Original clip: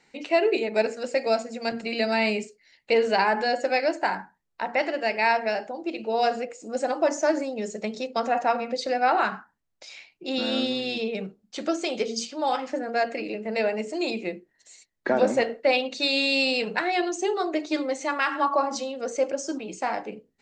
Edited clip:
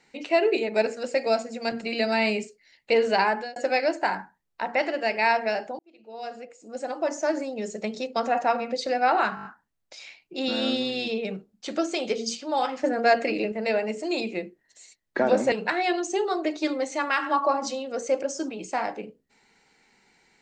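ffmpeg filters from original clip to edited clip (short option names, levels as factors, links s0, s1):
-filter_complex "[0:a]asplit=11[s0][s1][s2][s3][s4][s5][s6][s7][s8][s9][s10];[s0]atrim=end=3.56,asetpts=PTS-STARTPTS,afade=t=out:st=3.26:d=0.3[s11];[s1]atrim=start=3.56:end=5.79,asetpts=PTS-STARTPTS,afade=t=in:d=0.004:c=hsin,afade=t=out:st=2.226:d=0.004:c=hsin[s12];[s2]atrim=start=5.79:end=9.372,asetpts=PTS-STARTPTS,afade=t=in:d=2.03[s13];[s3]atrim=start=9.348:end=9.372[s14];[s4]atrim=start=9.348:end=9.372[s15];[s5]atrim=start=9.348:end=9.372[s16];[s6]atrim=start=9.348:end=9.372[s17];[s7]atrim=start=9.348:end=12.742[s18];[s8]atrim=start=12.738:end=13.422,asetpts=PTS-STARTPTS,volume=1.78[s19];[s9]atrim=start=13.418:end=15.422[s20];[s10]atrim=start=16.608[s21];[s11][s12][s13]concat=n=3:v=0:a=1[s22];[s22][s14]acrossfade=d=0.004:c1=hsin:c2=hsin[s23];[s23][s15]acrossfade=d=0.004:c1=hsin:c2=hsin[s24];[s24][s16]acrossfade=d=0.004:c1=hsin:c2=hsin[s25];[s25][s17]acrossfade=d=0.004:c1=hsin:c2=hsin[s26];[s26][s18]acrossfade=d=0.004:c1=hsin:c2=hsin[s27];[s27][s19]acrossfade=d=0.004:c1=hsin:c2=hsin[s28];[s28][s20]acrossfade=d=0.004:c1=hsin:c2=hsin[s29];[s29][s21]acrossfade=d=0.004:c1=hsin:c2=hsin"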